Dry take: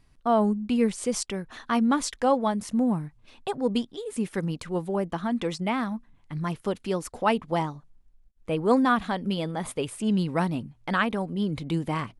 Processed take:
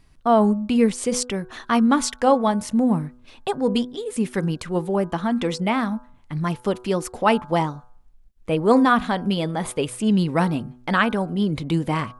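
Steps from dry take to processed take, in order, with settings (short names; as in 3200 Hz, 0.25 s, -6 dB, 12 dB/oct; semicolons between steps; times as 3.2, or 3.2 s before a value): de-hum 123.7 Hz, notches 13; gain +5.5 dB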